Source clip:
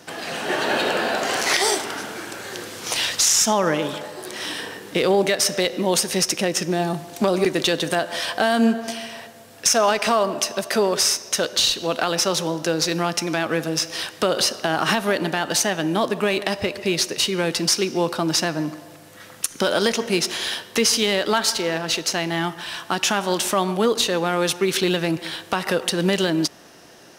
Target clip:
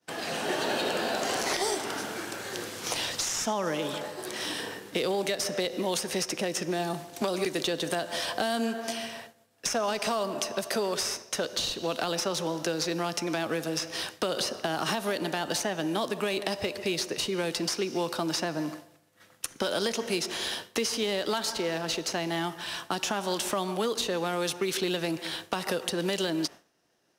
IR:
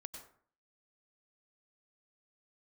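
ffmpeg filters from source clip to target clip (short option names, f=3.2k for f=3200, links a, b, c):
-filter_complex "[0:a]acrossover=split=290|1100|3200[a][b][c][d];[a]acompressor=threshold=-36dB:ratio=4[e];[b]acompressor=threshold=-27dB:ratio=4[f];[c]acompressor=threshold=-37dB:ratio=4[g];[d]acompressor=threshold=-30dB:ratio=4[h];[e][f][g][h]amix=inputs=4:normalize=0,agate=range=-33dB:threshold=-33dB:ratio=3:detection=peak,volume=-2.5dB"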